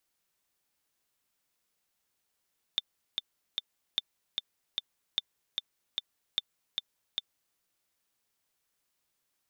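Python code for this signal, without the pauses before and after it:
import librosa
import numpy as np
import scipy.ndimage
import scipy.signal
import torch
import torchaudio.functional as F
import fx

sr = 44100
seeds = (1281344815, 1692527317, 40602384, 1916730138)

y = fx.click_track(sr, bpm=150, beats=3, bars=4, hz=3560.0, accent_db=3.5, level_db=-14.5)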